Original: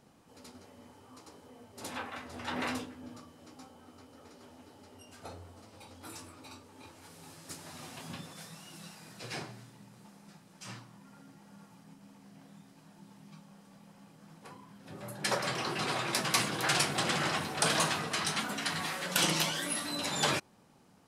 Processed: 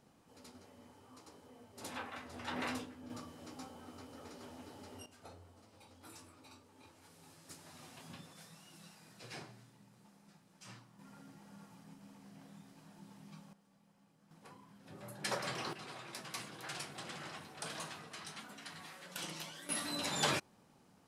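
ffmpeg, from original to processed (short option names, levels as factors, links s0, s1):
-af "asetnsamples=n=441:p=0,asendcmd='3.1 volume volume 2.5dB;5.06 volume volume -8.5dB;10.99 volume volume -1.5dB;13.53 volume volume -13.5dB;14.31 volume volume -6.5dB;15.73 volume volume -16dB;19.69 volume volume -3.5dB',volume=0.596"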